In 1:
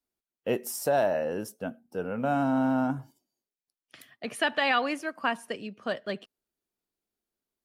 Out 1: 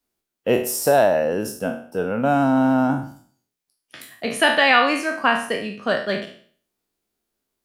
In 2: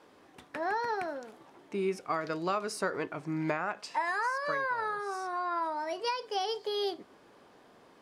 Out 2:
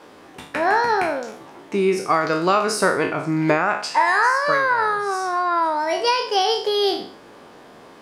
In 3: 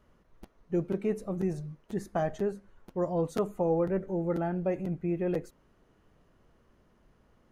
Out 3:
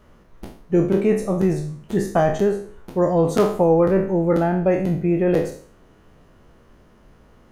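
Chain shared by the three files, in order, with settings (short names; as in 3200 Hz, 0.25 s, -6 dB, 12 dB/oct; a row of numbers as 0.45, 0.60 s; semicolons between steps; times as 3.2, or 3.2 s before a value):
spectral trails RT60 0.50 s; match loudness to -20 LUFS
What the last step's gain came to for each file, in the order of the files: +8.0, +12.0, +11.0 dB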